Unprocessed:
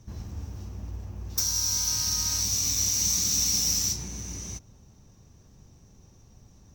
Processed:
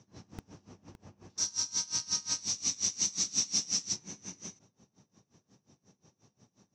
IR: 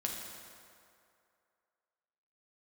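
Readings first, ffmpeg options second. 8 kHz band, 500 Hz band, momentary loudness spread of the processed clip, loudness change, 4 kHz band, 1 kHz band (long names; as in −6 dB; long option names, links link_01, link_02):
−6.5 dB, −5.5 dB, 15 LU, −6.5 dB, −6.0 dB, −5.5 dB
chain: -filter_complex "[0:a]lowpass=frequency=7100:width=0.5412,lowpass=frequency=7100:width=1.3066,acrossover=split=130[link_01][link_02];[link_01]acrusher=bits=4:mix=0:aa=0.000001[link_03];[link_03][link_02]amix=inputs=2:normalize=0,aeval=exprs='val(0)*pow(10,-23*(0.5-0.5*cos(2*PI*5.6*n/s))/20)':channel_layout=same"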